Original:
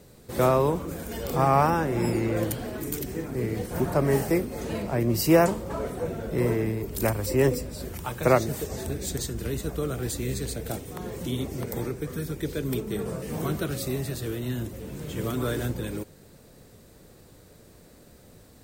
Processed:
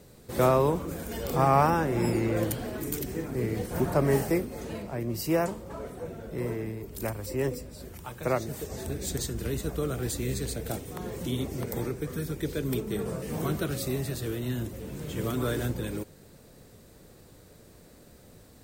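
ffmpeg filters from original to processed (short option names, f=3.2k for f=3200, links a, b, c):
-af "volume=5.5dB,afade=t=out:st=4.11:d=0.79:silence=0.473151,afade=t=in:st=8.35:d=0.8:silence=0.473151"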